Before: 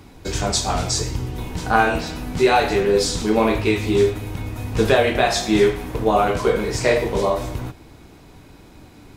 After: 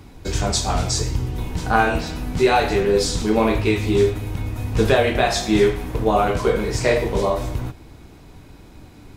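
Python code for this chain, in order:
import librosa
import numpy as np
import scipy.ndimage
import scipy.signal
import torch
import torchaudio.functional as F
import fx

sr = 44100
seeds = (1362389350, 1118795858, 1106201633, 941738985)

y = fx.low_shelf(x, sr, hz=120.0, db=6.0)
y = y * librosa.db_to_amplitude(-1.0)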